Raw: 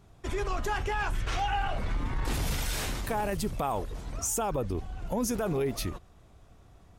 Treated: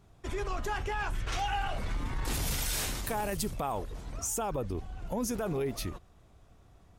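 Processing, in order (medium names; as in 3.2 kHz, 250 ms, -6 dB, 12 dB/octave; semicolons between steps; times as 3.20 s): 1.32–3.54 s: treble shelf 4.3 kHz +8 dB; trim -3 dB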